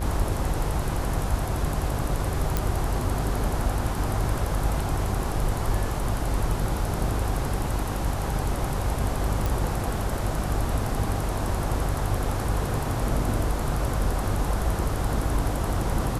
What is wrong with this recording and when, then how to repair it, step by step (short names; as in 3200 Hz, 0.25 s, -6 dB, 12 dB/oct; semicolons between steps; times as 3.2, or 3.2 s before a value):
buzz 50 Hz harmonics 35 -30 dBFS
2.57 pop -9 dBFS
9.46 pop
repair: de-click; de-hum 50 Hz, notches 35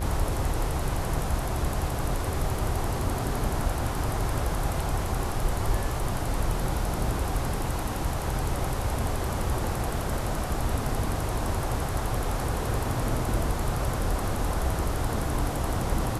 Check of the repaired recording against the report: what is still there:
none